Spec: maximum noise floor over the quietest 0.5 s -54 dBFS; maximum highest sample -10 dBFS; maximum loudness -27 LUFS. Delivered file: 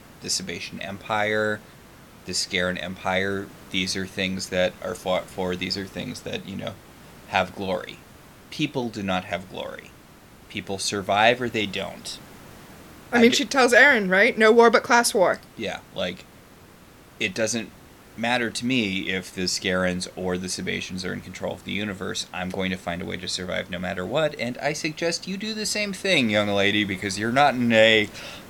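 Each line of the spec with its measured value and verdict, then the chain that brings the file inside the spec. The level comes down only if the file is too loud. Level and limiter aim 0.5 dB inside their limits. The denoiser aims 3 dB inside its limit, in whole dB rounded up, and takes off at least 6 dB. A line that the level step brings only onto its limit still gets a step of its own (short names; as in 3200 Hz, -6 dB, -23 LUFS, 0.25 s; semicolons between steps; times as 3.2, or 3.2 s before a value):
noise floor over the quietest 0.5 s -49 dBFS: fail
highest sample -2.5 dBFS: fail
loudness -23.0 LUFS: fail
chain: denoiser 6 dB, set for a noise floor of -49 dBFS; gain -4.5 dB; limiter -10.5 dBFS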